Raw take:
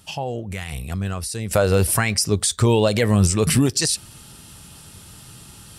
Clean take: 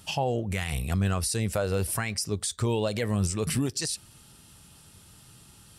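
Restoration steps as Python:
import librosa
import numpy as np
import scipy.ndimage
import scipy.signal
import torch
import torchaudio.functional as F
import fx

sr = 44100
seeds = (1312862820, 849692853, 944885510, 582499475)

y = fx.fix_level(x, sr, at_s=1.51, step_db=-10.0)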